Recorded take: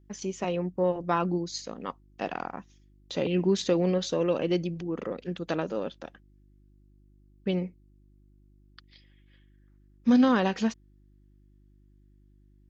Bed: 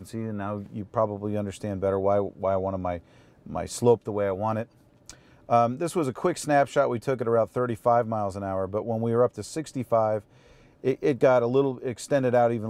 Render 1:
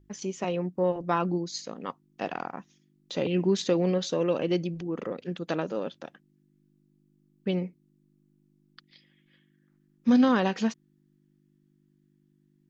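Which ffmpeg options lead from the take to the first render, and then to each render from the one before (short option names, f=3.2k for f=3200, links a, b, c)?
-af "bandreject=f=50:t=h:w=4,bandreject=f=100:t=h:w=4"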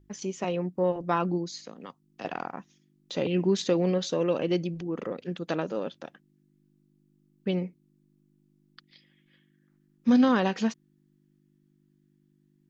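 -filter_complex "[0:a]asettb=1/sr,asplit=3[a][b][c];[a]atrim=end=1.534[d];[b]atrim=start=1.53:end=2.25,asetpts=PTS-STARTPTS,afade=t=in:d=0.004:c=qsin,afade=t=out:st=0.716:d=0.004:c=qsin,acrossover=split=210|3400[e][f][g];[e]acompressor=threshold=-51dB:ratio=4[h];[f]acompressor=threshold=-42dB:ratio=4[i];[g]acompressor=threshold=-44dB:ratio=4[j];[h][i][j]amix=inputs=3:normalize=0[k];[c]atrim=start=2.246[l];[d][k]acrossfade=d=0.004:c1=hsin:c2=qsin[m];[m][l]acrossfade=d=0.004:c1=qsin:c2=hsin"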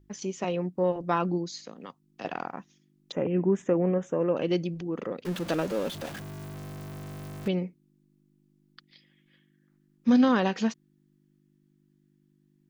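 -filter_complex "[0:a]asettb=1/sr,asplit=3[a][b][c];[a]atrim=end=3.124[d];[b]atrim=start=3.12:end=4.37,asetpts=PTS-STARTPTS,afade=t=in:d=0.004:c=qsin,afade=t=out:st=1.246:d=0.004:c=qsin,asuperstop=centerf=4300:order=4:qfactor=0.6[e];[c]atrim=start=4.366[f];[d][e]acrossfade=d=0.004:c1=hsin:c2=qsin[g];[g][f]acrossfade=d=0.004:c1=qsin:c2=hsin,asettb=1/sr,asplit=3[h][i][j];[h]atrim=end=5.254[k];[i]atrim=start=5.25:end=7.48,asetpts=PTS-STARTPTS,afade=t=in:d=0.004:c=qsin,afade=t=out:st=2.226:d=0.004:c=qsin,aeval=exprs='val(0)+0.5*0.02*sgn(val(0))':c=same[l];[j]atrim=start=7.476[m];[k][l]acrossfade=d=0.004:c1=hsin:c2=qsin[n];[n][m]acrossfade=d=0.004:c1=qsin:c2=hsin"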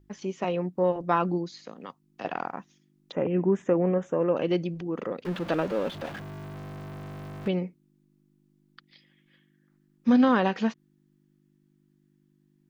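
-filter_complex "[0:a]acrossover=split=4100[a][b];[b]acompressor=threshold=-57dB:ratio=4:attack=1:release=60[c];[a][c]amix=inputs=2:normalize=0,equalizer=f=1k:t=o:w=2:g=3"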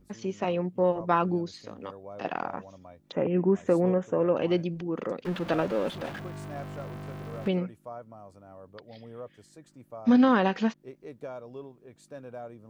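-filter_complex "[1:a]volume=-20dB[a];[0:a][a]amix=inputs=2:normalize=0"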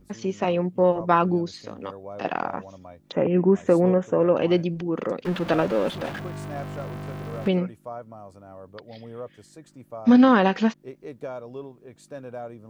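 -af "volume=5dB"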